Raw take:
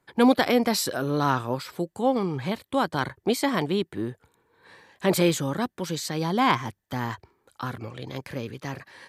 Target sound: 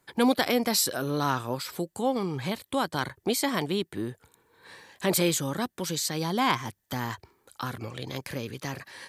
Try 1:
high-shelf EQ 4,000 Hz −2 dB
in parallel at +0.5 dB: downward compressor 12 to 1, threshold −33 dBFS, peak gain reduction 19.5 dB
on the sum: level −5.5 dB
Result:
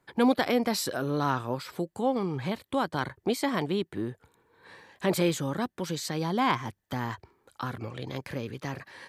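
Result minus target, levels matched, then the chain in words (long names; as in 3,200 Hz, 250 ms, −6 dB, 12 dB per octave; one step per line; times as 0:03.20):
8,000 Hz band −7.0 dB
high-shelf EQ 4,000 Hz +9.5 dB
in parallel at +0.5 dB: downward compressor 12 to 1, threshold −33 dBFS, peak gain reduction 19.5 dB
on the sum: level −5.5 dB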